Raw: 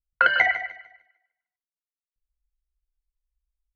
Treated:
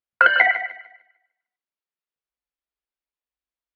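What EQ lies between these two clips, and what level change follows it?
band-pass 250–4600 Hz; distance through air 120 m; +5.0 dB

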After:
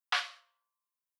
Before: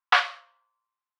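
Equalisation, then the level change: pre-emphasis filter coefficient 0.9; bass shelf 460 Hz +9.5 dB; 0.0 dB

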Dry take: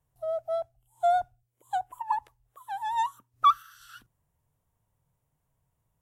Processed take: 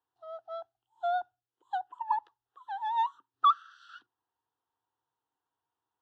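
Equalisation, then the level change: cabinet simulation 220–3400 Hz, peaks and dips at 240 Hz -7 dB, 440 Hz -5 dB, 1.1 kHz -6 dB; tilt EQ +2.5 dB/octave; static phaser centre 600 Hz, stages 6; +2.0 dB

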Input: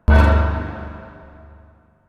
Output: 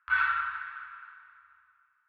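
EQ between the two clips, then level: elliptic high-pass 1.3 kHz, stop band 50 dB; distance through air 400 m; treble shelf 2.8 kHz -10 dB; +4.0 dB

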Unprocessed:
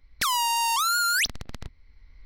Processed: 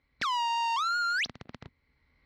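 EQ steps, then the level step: high-pass 130 Hz 12 dB/octave; distance through air 190 m; -2.5 dB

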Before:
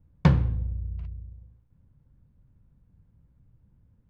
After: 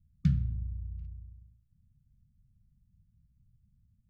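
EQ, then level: brick-wall FIR band-stop 260–1200 Hz; peaking EQ 1.5 kHz -14 dB 2.9 oct; -6.0 dB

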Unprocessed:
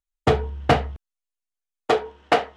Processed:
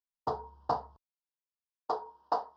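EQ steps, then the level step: dynamic bell 2.9 kHz, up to -6 dB, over -42 dBFS, Q 1.9; two resonant band-passes 2.2 kHz, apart 2.3 oct; tilt EQ -3.5 dB/octave; 0.0 dB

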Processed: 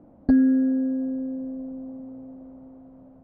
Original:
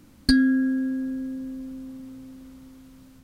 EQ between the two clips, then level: resonant low-pass 670 Hz, resonance Q 4.2; distance through air 84 m; bass shelf 110 Hz -9 dB; +1.5 dB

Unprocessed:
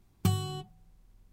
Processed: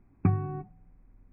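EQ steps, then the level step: brick-wall FIR low-pass 2.6 kHz; distance through air 220 m; peaking EQ 270 Hz +12 dB 0.24 oct; +2.5 dB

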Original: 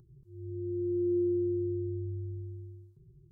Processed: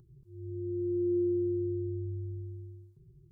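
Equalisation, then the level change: dynamic bell 240 Hz, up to -5 dB, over -54 dBFS, Q 5.9; 0.0 dB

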